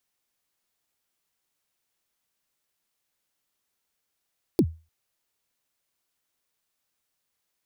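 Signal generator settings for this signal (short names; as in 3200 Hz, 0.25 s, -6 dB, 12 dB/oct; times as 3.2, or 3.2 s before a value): kick drum length 0.30 s, from 410 Hz, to 81 Hz, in 64 ms, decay 0.30 s, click on, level -12 dB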